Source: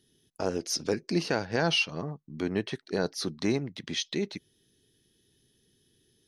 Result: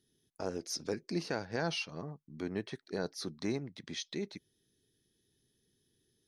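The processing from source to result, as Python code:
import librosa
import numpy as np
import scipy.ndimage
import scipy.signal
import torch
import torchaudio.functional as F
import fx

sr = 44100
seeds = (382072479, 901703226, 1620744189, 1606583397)

y = fx.peak_eq(x, sr, hz=2900.0, db=-6.0, octaves=0.29)
y = F.gain(torch.from_numpy(y), -7.5).numpy()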